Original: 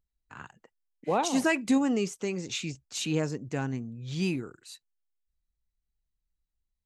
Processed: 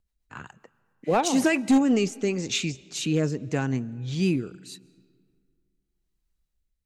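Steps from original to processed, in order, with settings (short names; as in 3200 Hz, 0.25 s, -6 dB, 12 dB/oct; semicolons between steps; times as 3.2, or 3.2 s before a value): rotary speaker horn 7.5 Hz, later 0.8 Hz, at 1.4; overloaded stage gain 21.5 dB; on a send: reverb RT60 2.1 s, pre-delay 0.105 s, DRR 23.5 dB; on the sum: gain +7 dB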